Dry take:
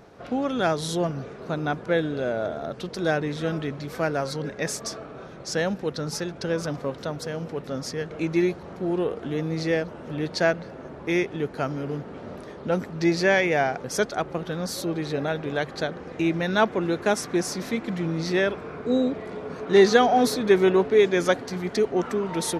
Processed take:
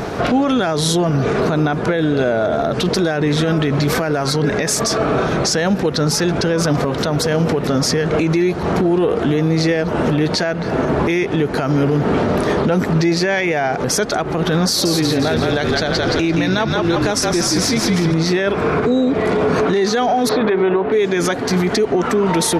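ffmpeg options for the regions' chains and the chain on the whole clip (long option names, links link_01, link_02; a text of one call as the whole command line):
ffmpeg -i in.wav -filter_complex "[0:a]asettb=1/sr,asplit=3[link_01][link_02][link_03];[link_01]atrim=end=14.684[link_04];[link_02]atrim=start=14.68:end=18.14,asetpts=PTS-STARTPTS,afade=type=in:duration=0.004:curve=qsin,afade=type=out:start_time=3.456:duration=0.004:curve=qsin,equalizer=frequency=4900:width=1.7:gain=8,asplit=7[link_05][link_06][link_07][link_08][link_09][link_10][link_11];[link_06]adelay=171,afreqshift=-39,volume=-4.5dB[link_12];[link_07]adelay=342,afreqshift=-78,volume=-11.1dB[link_13];[link_08]adelay=513,afreqshift=-117,volume=-17.6dB[link_14];[link_09]adelay=684,afreqshift=-156,volume=-24.2dB[link_15];[link_10]adelay=855,afreqshift=-195,volume=-30.7dB[link_16];[link_11]adelay=1026,afreqshift=-234,volume=-37.3dB[link_17];[link_05][link_12][link_13][link_14][link_15][link_16][link_17]amix=inputs=7:normalize=0,atrim=end_sample=152586[link_18];[link_03]atrim=start=18.136[link_19];[link_04][link_18]acrossfade=duration=0.004:curve1=hsin:curve2=qsin[link_20];[link_20][link_19]acrossfade=duration=0.004:curve1=qsin:curve2=hsin,asettb=1/sr,asplit=3[link_21][link_22][link_23];[link_21]atrim=end=20.294[link_24];[link_22]atrim=start=20.29:end=20.92,asetpts=PTS-STARTPTS,afade=type=in:duration=0.004:curve=qsin,afade=type=out:start_time=0.626:duration=0.004:curve=qsin,lowpass=frequency=3600:width=0.5412,lowpass=frequency=3600:width=1.3066,equalizer=frequency=800:width=0.5:gain=8,bandreject=frequency=50:width_type=h:width=6,bandreject=frequency=100:width_type=h:width=6,bandreject=frequency=150:width_type=h:width=6,bandreject=frequency=200:width_type=h:width=6,bandreject=frequency=250:width_type=h:width=6,bandreject=frequency=300:width_type=h:width=6,bandreject=frequency=350:width_type=h:width=6,bandreject=frequency=400:width_type=h:width=6,bandreject=frequency=450:width_type=h:width=6[link_25];[link_23]atrim=start=20.916[link_26];[link_24][link_25]acrossfade=duration=0.004:curve1=hsin:curve2=qsin[link_27];[link_27][link_26]acrossfade=duration=0.004:curve1=qsin:curve2=hsin,acompressor=threshold=-34dB:ratio=6,bandreject=frequency=540:width=14,alimiter=level_in=34dB:limit=-1dB:release=50:level=0:latency=1,volume=-7.5dB" out.wav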